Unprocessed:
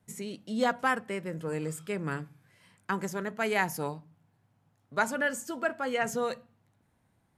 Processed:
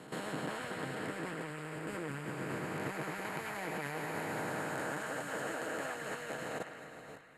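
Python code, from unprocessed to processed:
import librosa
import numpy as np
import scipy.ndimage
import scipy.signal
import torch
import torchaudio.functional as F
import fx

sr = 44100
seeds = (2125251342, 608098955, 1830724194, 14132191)

p1 = fx.spec_blur(x, sr, span_ms=1390.0)
p2 = p1 + 0.5 * np.pad(p1, (int(6.4 * sr / 1000.0), 0))[:len(p1)]
p3 = fx.level_steps(p2, sr, step_db=11)
p4 = p3 + fx.echo_banded(p3, sr, ms=105, feedback_pct=78, hz=2000.0, wet_db=-7.0, dry=0)
p5 = fx.hpss(p4, sr, part='harmonic', gain_db=-17)
p6 = fx.peak_eq(p5, sr, hz=140.0, db=6.0, octaves=0.27)
p7 = fx.notch(p6, sr, hz=6000.0, q=7.1)
y = p7 * librosa.db_to_amplitude(12.5)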